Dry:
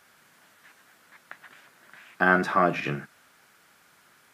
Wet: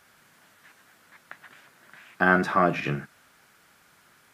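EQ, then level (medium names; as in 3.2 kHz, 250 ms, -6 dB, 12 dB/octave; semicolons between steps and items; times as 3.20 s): bass shelf 120 Hz +7.5 dB; 0.0 dB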